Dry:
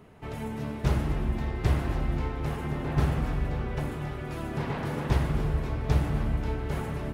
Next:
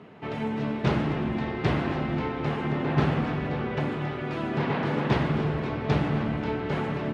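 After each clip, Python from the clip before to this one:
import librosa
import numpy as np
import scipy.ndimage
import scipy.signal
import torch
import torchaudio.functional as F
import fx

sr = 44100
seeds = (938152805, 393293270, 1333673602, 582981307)

y = scipy.signal.sosfilt(scipy.signal.cheby1(2, 1.0, [180.0, 3500.0], 'bandpass', fs=sr, output='sos'), x)
y = F.gain(torch.from_numpy(y), 6.5).numpy()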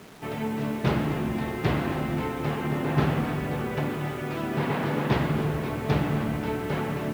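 y = fx.quant_dither(x, sr, seeds[0], bits=8, dither='none')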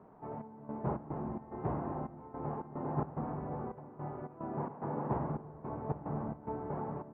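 y = fx.step_gate(x, sr, bpm=109, pattern='xxx..xx.xx.x', floor_db=-12.0, edge_ms=4.5)
y = fx.ladder_lowpass(y, sr, hz=1100.0, resonance_pct=45)
y = F.gain(torch.from_numpy(y), -2.5).numpy()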